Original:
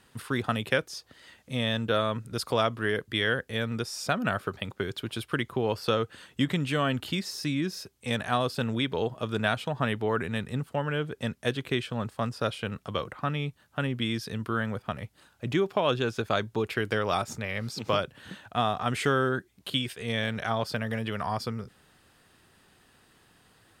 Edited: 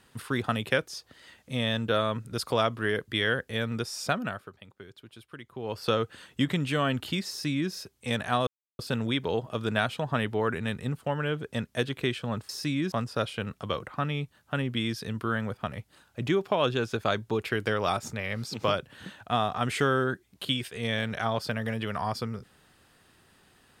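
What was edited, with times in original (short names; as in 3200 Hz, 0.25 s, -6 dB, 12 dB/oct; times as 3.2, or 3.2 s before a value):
4.12–5.87 dip -15.5 dB, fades 0.49 s quadratic
7.29–7.72 copy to 12.17
8.47 insert silence 0.32 s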